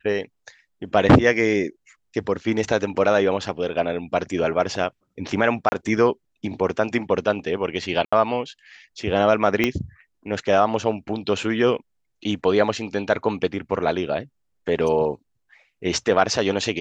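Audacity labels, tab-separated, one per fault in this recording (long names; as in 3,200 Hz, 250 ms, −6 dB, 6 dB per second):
5.690000	5.720000	drop-out 30 ms
8.050000	8.120000	drop-out 75 ms
9.640000	9.640000	click −6 dBFS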